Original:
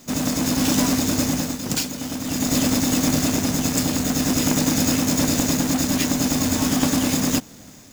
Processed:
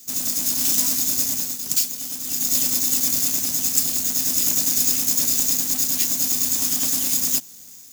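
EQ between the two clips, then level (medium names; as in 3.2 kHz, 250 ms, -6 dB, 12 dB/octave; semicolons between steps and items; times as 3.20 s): pre-emphasis filter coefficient 0.8; treble shelf 2.8 kHz +8.5 dB; -2.0 dB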